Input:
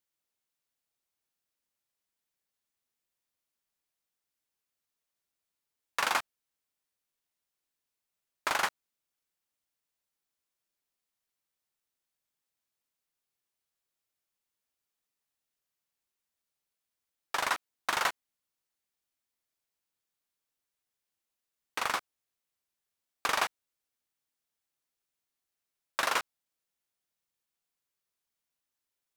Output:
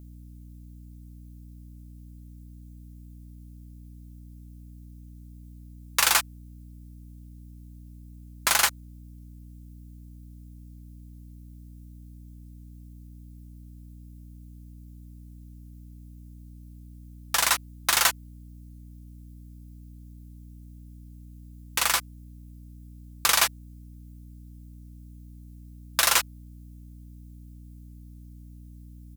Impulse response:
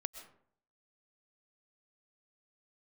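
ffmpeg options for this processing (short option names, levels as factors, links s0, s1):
-af "crystalizer=i=5.5:c=0,aecho=1:1:5.9:0.36,aeval=exprs='val(0)+0.00631*(sin(2*PI*60*n/s)+sin(2*PI*2*60*n/s)/2+sin(2*PI*3*60*n/s)/3+sin(2*PI*4*60*n/s)/4+sin(2*PI*5*60*n/s)/5)':c=same"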